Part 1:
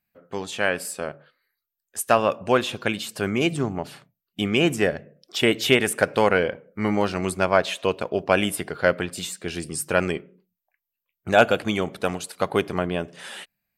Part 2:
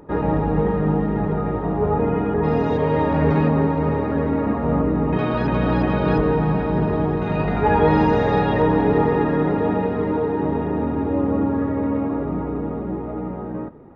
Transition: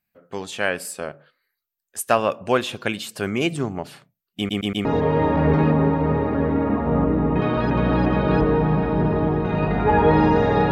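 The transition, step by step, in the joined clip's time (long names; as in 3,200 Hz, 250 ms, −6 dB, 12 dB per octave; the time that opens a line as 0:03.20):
part 1
0:04.37: stutter in place 0.12 s, 4 plays
0:04.85: continue with part 2 from 0:02.62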